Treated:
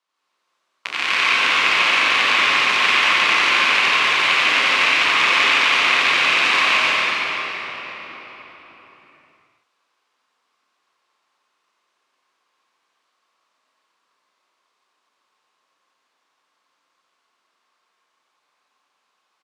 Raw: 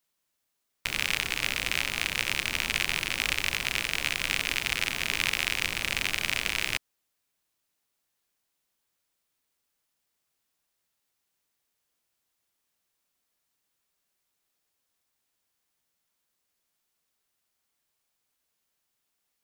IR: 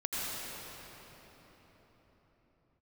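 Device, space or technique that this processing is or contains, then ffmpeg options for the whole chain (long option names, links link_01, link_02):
station announcement: -filter_complex "[0:a]highpass=360,lowpass=4600,equalizer=frequency=1100:width_type=o:width=0.41:gain=11.5,aecho=1:1:90.38|142.9:0.631|0.708[link_01];[1:a]atrim=start_sample=2205[link_02];[link_01][link_02]afir=irnorm=-1:irlink=0,volume=4.5dB"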